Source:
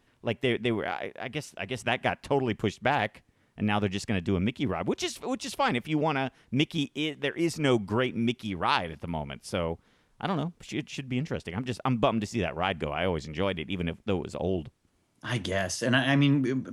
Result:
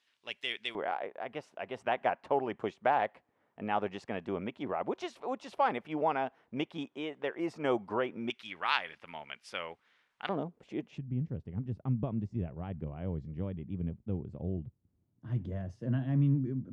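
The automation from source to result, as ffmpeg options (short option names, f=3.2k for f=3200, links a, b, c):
-af "asetnsamples=n=441:p=0,asendcmd='0.75 bandpass f 760;8.3 bandpass f 2100;10.29 bandpass f 490;10.98 bandpass f 110',bandpass=f=3.9k:t=q:w=1.1:csg=0"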